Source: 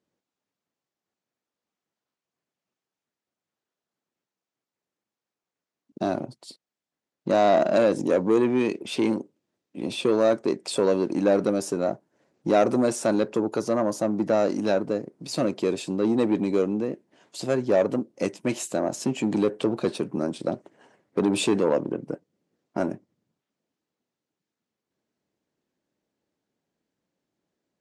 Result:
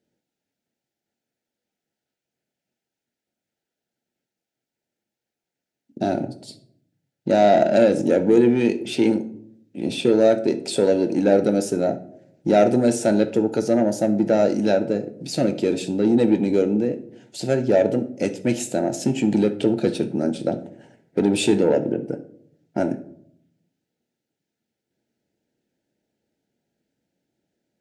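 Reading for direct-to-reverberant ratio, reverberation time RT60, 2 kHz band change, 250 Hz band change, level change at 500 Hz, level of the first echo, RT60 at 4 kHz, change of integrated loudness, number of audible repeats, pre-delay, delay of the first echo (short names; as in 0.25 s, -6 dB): 9.0 dB, 0.65 s, +2.5 dB, +5.0 dB, +4.0 dB, none, 0.35 s, +4.5 dB, none, 9 ms, none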